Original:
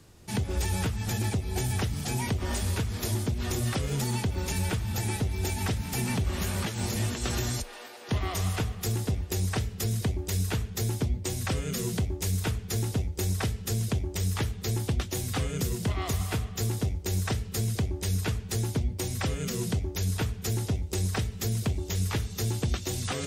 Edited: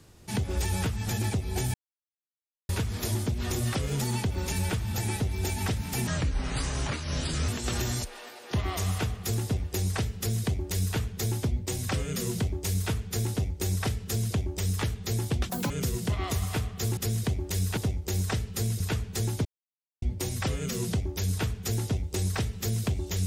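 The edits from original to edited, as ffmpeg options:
-filter_complex "[0:a]asplit=11[a][b][c][d][e][f][g][h][i][j][k];[a]atrim=end=1.74,asetpts=PTS-STARTPTS,afade=t=out:st=1.736:d=0.004:c=hsin[l];[b]atrim=start=1.74:end=2.69,asetpts=PTS-STARTPTS,volume=0[m];[c]atrim=start=2.69:end=6.074,asetpts=PTS-STARTPTS,afade=t=in:d=0.004:c=hsin[n];[d]atrim=start=6.07:end=7.06,asetpts=PTS-STARTPTS,asetrate=30870,aresample=44100,atrim=end_sample=62370,asetpts=PTS-STARTPTS[o];[e]atrim=start=7.056:end=15.074[p];[f]atrim=start=15.07:end=15.48,asetpts=PTS-STARTPTS,asetrate=87318,aresample=44100[q];[g]atrim=start=15.476:end=16.752[r];[h]atrim=start=9.748:end=10.552[s];[i]atrim=start=16.748:end=17.782[t];[j]atrim=start=18.158:end=18.81,asetpts=PTS-STARTPTS,afade=t=out:st=0.648:d=0.004:c=hsin,apad=pad_dur=0.57[u];[k]atrim=start=18.81,asetpts=PTS-STARTPTS,afade=t=in:d=0.004:c=hsin[v];[l][m][n]concat=n=3:v=0:a=1[w];[w][o]acrossfade=d=0.004:c1=hsin:c2=hsin[x];[x][p]acrossfade=d=0.004:c1=hsin:c2=hsin[y];[y][q]acrossfade=d=0.004:c1=hsin:c2=hsin[z];[z][r]acrossfade=d=0.004:c1=hsin:c2=hsin[aa];[aa][s]acrossfade=d=0.004:c1=hsin:c2=hsin[ab];[ab][t]acrossfade=d=0.004:c1=hsin:c2=hsin[ac];[u][v]concat=n=2:v=0:a=1[ad];[ac][ad]acrossfade=d=0.004:c1=hsin:c2=hsin"

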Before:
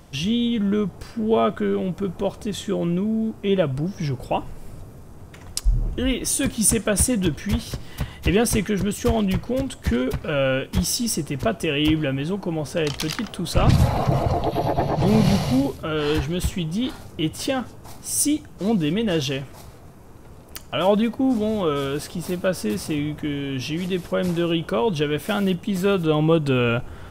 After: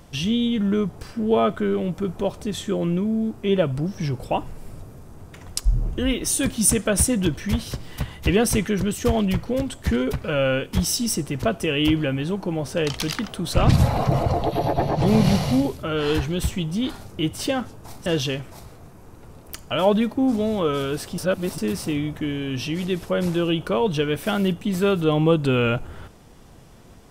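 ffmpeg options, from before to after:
-filter_complex "[0:a]asplit=4[a][b][c][d];[a]atrim=end=18.062[e];[b]atrim=start=19.078:end=22.202[f];[c]atrim=start=22.198:end=22.602,asetpts=PTS-STARTPTS,areverse[g];[d]atrim=start=22.598[h];[e][f]acrossfade=d=0.004:c1=hsin:c2=hsin[i];[i][g]acrossfade=d=0.004:c1=hsin:c2=hsin[j];[j][h]acrossfade=d=0.004:c1=hsin:c2=hsin"

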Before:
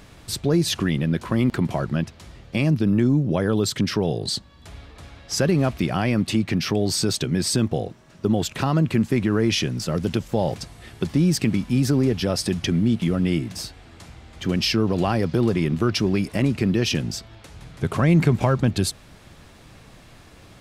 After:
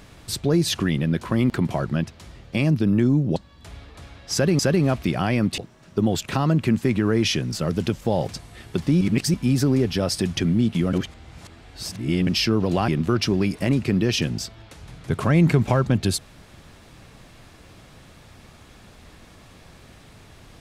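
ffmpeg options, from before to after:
-filter_complex "[0:a]asplit=9[a][b][c][d][e][f][g][h][i];[a]atrim=end=3.362[j];[b]atrim=start=4.368:end=5.602[k];[c]atrim=start=5.338:end=6.332[l];[d]atrim=start=7.848:end=11.282[m];[e]atrim=start=11.278:end=11.612,asetpts=PTS-STARTPTS,areverse[n];[f]atrim=start=11.608:end=13.202[o];[g]atrim=start=13.198:end=14.542,asetpts=PTS-STARTPTS,areverse[p];[h]atrim=start=14.538:end=15.152[q];[i]atrim=start=15.608[r];[j][k]acrossfade=d=0.004:c1=hsin:c2=hsin[s];[s][l]acrossfade=d=0.004:c1=hsin:c2=hsin[t];[t][m]acrossfade=d=0.004:c1=hsin:c2=hsin[u];[u][n]acrossfade=d=0.004:c1=hsin:c2=hsin[v];[v][o]acrossfade=d=0.004:c1=hsin:c2=hsin[w];[w][p]acrossfade=d=0.004:c1=hsin:c2=hsin[x];[x][q]acrossfade=d=0.004:c1=hsin:c2=hsin[y];[y][r]acrossfade=d=0.004:c1=hsin:c2=hsin"

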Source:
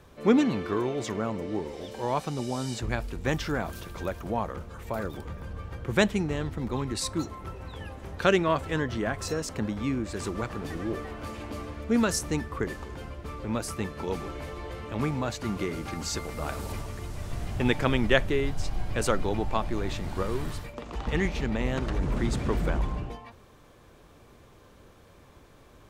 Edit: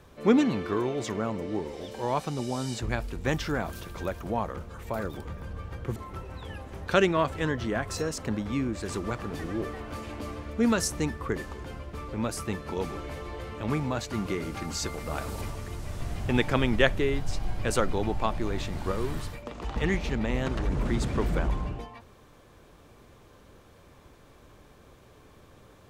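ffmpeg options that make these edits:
-filter_complex "[0:a]asplit=2[a][b];[a]atrim=end=5.962[c];[b]atrim=start=7.268[d];[c][d]acrossfade=d=0.004:c1=hsin:c2=hsin"

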